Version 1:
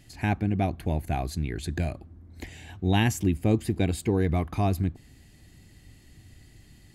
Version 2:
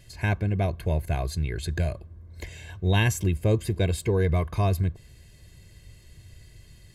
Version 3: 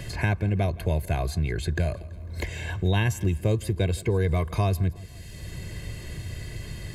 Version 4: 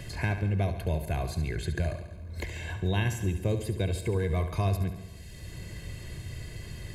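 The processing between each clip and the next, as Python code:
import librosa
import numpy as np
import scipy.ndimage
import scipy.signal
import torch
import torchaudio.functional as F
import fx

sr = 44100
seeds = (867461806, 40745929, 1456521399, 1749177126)

y1 = x + 0.7 * np.pad(x, (int(1.9 * sr / 1000.0), 0))[:len(x)]
y2 = fx.echo_feedback(y1, sr, ms=166, feedback_pct=37, wet_db=-22.5)
y2 = fx.band_squash(y2, sr, depth_pct=70)
y3 = fx.echo_feedback(y2, sr, ms=70, feedback_pct=59, wet_db=-10)
y3 = y3 * 10.0 ** (-4.5 / 20.0)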